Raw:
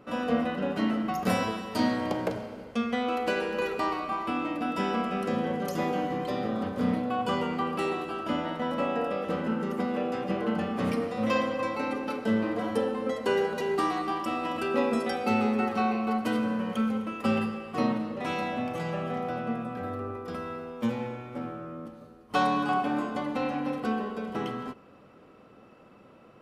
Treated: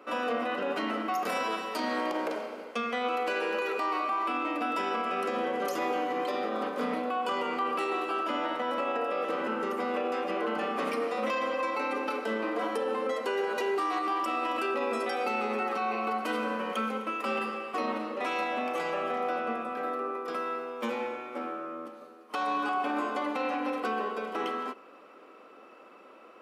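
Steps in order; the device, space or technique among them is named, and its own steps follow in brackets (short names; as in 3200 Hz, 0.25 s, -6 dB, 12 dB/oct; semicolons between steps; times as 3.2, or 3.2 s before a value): laptop speaker (HPF 300 Hz 24 dB/oct; bell 1200 Hz +4.5 dB 0.6 oct; bell 2400 Hz +4 dB 0.4 oct; limiter -24 dBFS, peak gain reduction 13 dB); gain +2 dB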